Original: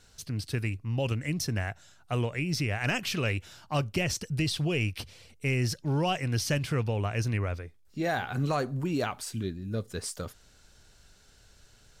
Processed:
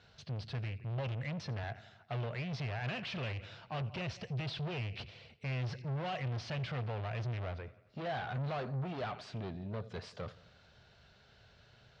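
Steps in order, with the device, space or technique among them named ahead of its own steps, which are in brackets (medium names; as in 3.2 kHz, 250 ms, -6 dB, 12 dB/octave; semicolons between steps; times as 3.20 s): 1.63–2.53 s: high-pass 63 Hz; analogue delay pedal into a guitar amplifier (bucket-brigade echo 87 ms, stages 4096, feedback 57%, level -23 dB; valve stage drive 37 dB, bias 0.2; cabinet simulation 75–4100 Hz, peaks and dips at 130 Hz +5 dB, 300 Hz -9 dB, 660 Hz +5 dB)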